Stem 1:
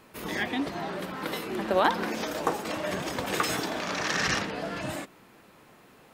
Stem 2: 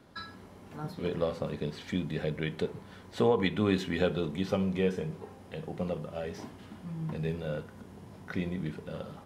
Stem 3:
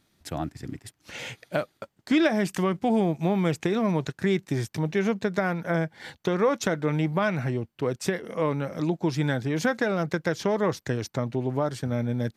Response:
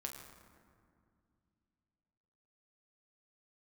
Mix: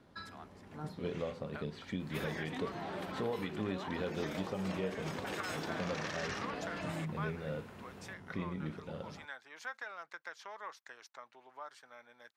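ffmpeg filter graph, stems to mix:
-filter_complex "[0:a]alimiter=limit=-19.5dB:level=0:latency=1:release=141,acompressor=threshold=-40dB:ratio=3,adelay=2000,volume=0dB[link_01];[1:a]volume=-4.5dB[link_02];[2:a]highpass=frequency=1100:width_type=q:width=1.6,volume=-16dB[link_03];[link_01][link_02][link_03]amix=inputs=3:normalize=0,highshelf=frequency=8000:gain=-9,alimiter=level_in=2dB:limit=-24dB:level=0:latency=1:release=317,volume=-2dB"

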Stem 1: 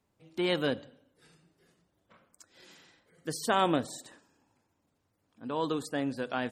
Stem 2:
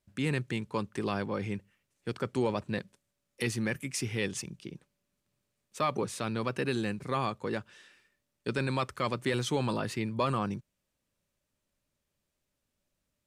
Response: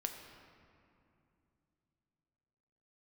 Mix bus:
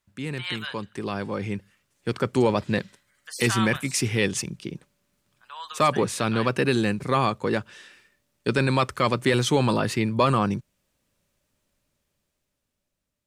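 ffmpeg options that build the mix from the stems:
-filter_complex "[0:a]highpass=frequency=1100:width=0.5412,highpass=frequency=1100:width=1.3066,volume=2.5dB[link_01];[1:a]dynaudnorm=framelen=430:gausssize=7:maxgain=10.5dB,volume=-1.5dB[link_02];[link_01][link_02]amix=inputs=2:normalize=0"

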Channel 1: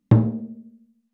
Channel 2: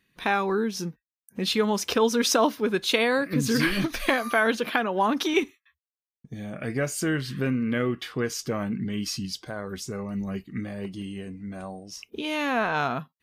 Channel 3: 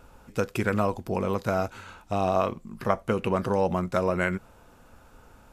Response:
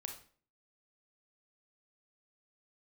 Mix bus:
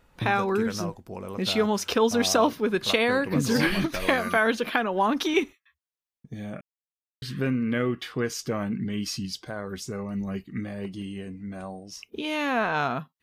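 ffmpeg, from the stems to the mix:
-filter_complex "[0:a]adelay=100,volume=-17dB[link_01];[1:a]equalizer=frequency=13000:width=0.32:gain=-2,volume=0dB,asplit=3[link_02][link_03][link_04];[link_02]atrim=end=6.61,asetpts=PTS-STARTPTS,afade=type=out:start_time=6.606:duration=0.004:curve=hsin[link_05];[link_03]atrim=start=6.61:end=7.22,asetpts=PTS-STARTPTS,volume=0[link_06];[link_04]atrim=start=7.22,asetpts=PTS-STARTPTS,afade=type=in:duration=0.004:curve=hsin[link_07];[link_05][link_06][link_07]concat=n=3:v=0:a=1[link_08];[2:a]volume=-9.5dB[link_09];[link_01][link_08][link_09]amix=inputs=3:normalize=0"

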